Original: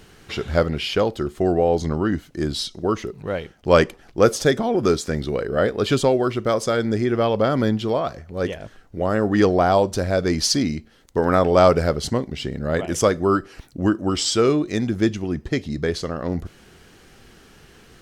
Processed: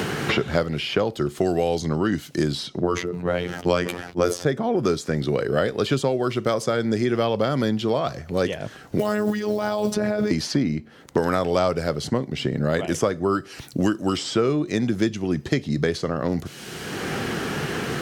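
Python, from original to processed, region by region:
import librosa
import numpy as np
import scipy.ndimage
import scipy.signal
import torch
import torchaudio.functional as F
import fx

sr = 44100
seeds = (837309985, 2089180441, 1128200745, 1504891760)

y = fx.chain(x, sr, fx.robotise(hz=88.0),
    fx.sustainer(db_per_s=73.0), at=(2.8, 4.45))
y = fx.chain(y, sr, fx.quant_companded(bits=8),
    fx.over_compress(threshold_db=-25.0, ratio=-1.0),
    fx.robotise(hz=210.0), at=(8.99, 10.31))
y = scipy.signal.sosfilt(scipy.signal.butter(2, 98.0, 'highpass', fs=sr, output='sos'), y)
y = fx.peak_eq(y, sr, hz=140.0, db=5.0, octaves=0.3)
y = fx.band_squash(y, sr, depth_pct=100)
y = y * librosa.db_to_amplitude(-2.5)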